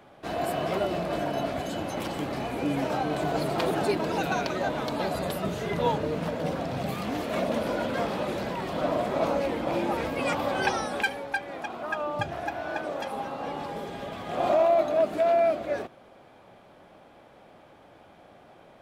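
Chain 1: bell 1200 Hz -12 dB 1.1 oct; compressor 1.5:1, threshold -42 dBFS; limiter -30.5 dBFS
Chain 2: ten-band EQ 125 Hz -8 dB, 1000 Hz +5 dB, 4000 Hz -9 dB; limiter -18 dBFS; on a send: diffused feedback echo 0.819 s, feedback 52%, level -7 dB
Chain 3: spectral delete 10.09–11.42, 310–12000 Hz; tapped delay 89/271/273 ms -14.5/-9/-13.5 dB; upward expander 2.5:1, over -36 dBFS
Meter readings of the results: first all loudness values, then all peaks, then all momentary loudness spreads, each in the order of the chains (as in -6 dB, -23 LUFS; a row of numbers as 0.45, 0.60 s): -39.5, -28.5, -33.5 LUFS; -30.5, -14.5, -11.5 dBFS; 18, 10, 24 LU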